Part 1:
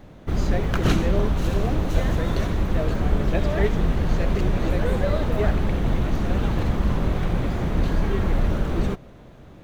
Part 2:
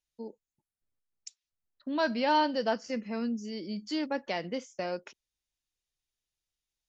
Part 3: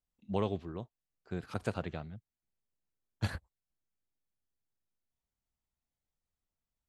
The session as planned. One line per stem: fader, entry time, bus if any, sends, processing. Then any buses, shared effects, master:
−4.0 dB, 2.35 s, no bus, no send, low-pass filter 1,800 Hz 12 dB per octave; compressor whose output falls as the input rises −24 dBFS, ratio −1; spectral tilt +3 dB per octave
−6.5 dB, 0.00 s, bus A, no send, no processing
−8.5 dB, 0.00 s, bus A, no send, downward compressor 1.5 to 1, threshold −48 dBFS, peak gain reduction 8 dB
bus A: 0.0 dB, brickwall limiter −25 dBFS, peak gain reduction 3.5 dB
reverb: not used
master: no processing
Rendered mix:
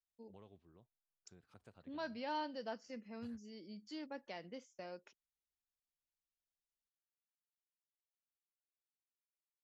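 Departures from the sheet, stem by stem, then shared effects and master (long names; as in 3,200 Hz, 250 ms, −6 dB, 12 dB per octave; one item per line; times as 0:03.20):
stem 1: muted
stem 2 −6.5 dB → −15.0 dB
stem 3 −8.5 dB → −20.0 dB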